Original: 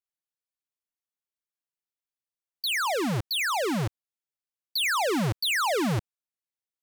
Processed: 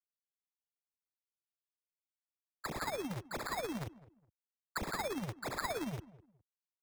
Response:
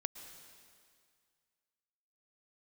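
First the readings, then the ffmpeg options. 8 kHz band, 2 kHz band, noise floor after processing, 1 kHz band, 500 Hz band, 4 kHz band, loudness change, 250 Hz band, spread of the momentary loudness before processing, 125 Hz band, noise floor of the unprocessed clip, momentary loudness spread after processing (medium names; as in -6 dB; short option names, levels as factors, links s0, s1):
-14.0 dB, -14.5 dB, under -85 dBFS, -11.5 dB, -11.0 dB, -19.0 dB, -13.5 dB, -12.0 dB, 8 LU, -13.5 dB, under -85 dBFS, 6 LU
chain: -filter_complex "[0:a]highpass=51,agate=range=0.0224:threshold=0.0794:ratio=3:detection=peak,equalizer=f=250:t=o:w=1:g=7,equalizer=f=2000:t=o:w=1:g=-12,equalizer=f=8000:t=o:w=1:g=7,acrossover=split=200[s0][s1];[s1]acompressor=threshold=0.0112:ratio=6[s2];[s0][s2]amix=inputs=2:normalize=0,tremolo=f=17:d=0.68,acrossover=split=560[s3][s4];[s3]acompressor=threshold=0.00501:ratio=6[s5];[s5][s4]amix=inputs=2:normalize=0,acrusher=samples=15:mix=1:aa=0.000001,asplit=2[s6][s7];[s7]adelay=207,lowpass=f=1100:p=1,volume=0.126,asplit=2[s8][s9];[s9]adelay=207,lowpass=f=1100:p=1,volume=0.26[s10];[s8][s10]amix=inputs=2:normalize=0[s11];[s6][s11]amix=inputs=2:normalize=0,volume=1.88"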